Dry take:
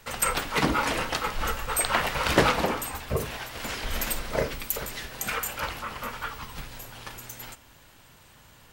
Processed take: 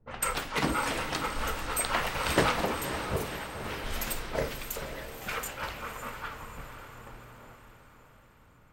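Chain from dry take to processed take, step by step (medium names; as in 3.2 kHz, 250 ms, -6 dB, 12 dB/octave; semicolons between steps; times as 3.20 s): level-controlled noise filter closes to 310 Hz, open at -25.5 dBFS; flange 0.98 Hz, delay 8.2 ms, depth 7.7 ms, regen -81%; echo that smears into a reverb 558 ms, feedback 53%, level -9 dB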